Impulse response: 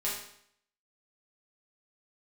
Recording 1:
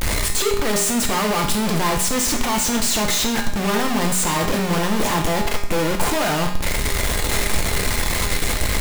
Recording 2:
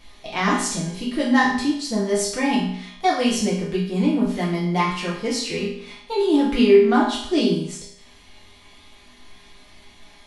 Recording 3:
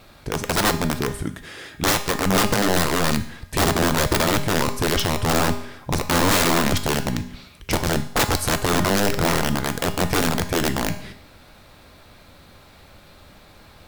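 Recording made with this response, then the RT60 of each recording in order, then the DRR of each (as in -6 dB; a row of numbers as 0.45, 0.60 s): 2; 0.65, 0.65, 0.65 s; 1.5, -7.0, 7.5 dB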